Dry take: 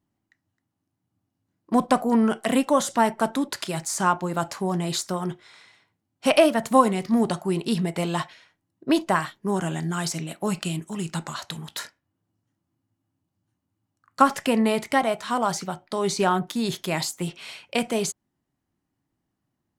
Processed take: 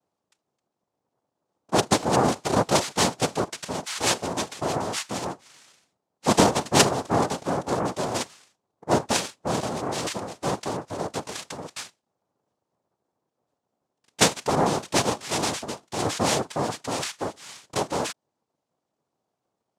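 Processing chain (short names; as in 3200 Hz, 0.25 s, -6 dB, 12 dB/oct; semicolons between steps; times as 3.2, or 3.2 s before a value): notch 2700 Hz, Q 5.5; noise vocoder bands 2; gain -1.5 dB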